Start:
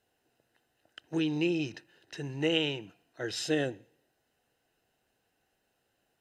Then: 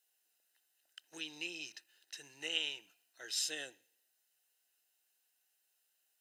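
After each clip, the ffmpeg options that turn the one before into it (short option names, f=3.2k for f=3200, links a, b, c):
-af "highpass=110,aderivative,volume=3.5dB"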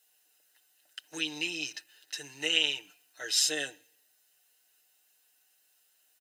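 -af "aecho=1:1:6.7:0.65,volume=8.5dB"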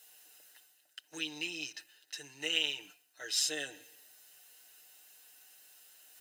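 -af "areverse,acompressor=mode=upward:threshold=-40dB:ratio=2.5,areverse,acrusher=bits=7:mode=log:mix=0:aa=0.000001,volume=-5dB"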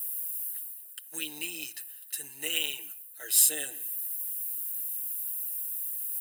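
-af "aexciter=amount=10.1:drive=9:freq=8.7k"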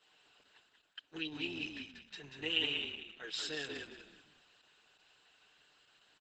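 -filter_complex "[0:a]highpass=130,equalizer=f=140:t=q:w=4:g=10,equalizer=f=200:t=q:w=4:g=5,equalizer=f=380:t=q:w=4:g=6,equalizer=f=620:t=q:w=4:g=-7,equalizer=f=1.1k:t=q:w=4:g=6,equalizer=f=2.1k:t=q:w=4:g=-5,lowpass=f=3.9k:w=0.5412,lowpass=f=3.9k:w=1.3066,asplit=2[a][b];[b]asplit=4[c][d][e][f];[c]adelay=187,afreqshift=-40,volume=-4.5dB[g];[d]adelay=374,afreqshift=-80,volume=-13.9dB[h];[e]adelay=561,afreqshift=-120,volume=-23.2dB[i];[f]adelay=748,afreqshift=-160,volume=-32.6dB[j];[g][h][i][j]amix=inputs=4:normalize=0[k];[a][k]amix=inputs=2:normalize=0" -ar 48000 -c:a libopus -b:a 10k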